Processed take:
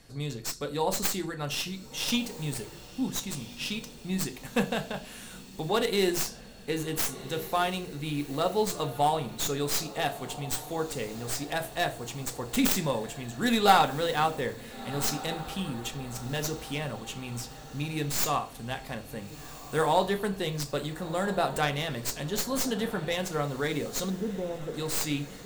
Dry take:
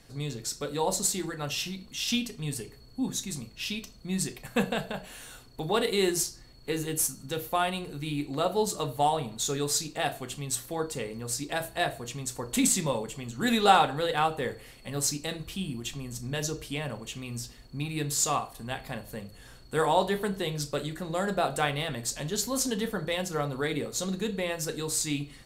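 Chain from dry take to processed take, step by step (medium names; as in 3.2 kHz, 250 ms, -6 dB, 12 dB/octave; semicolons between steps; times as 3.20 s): tracing distortion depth 0.15 ms; 24.10–24.74 s: Gaussian low-pass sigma 9.3 samples; echo that smears into a reverb 1423 ms, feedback 49%, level -15.5 dB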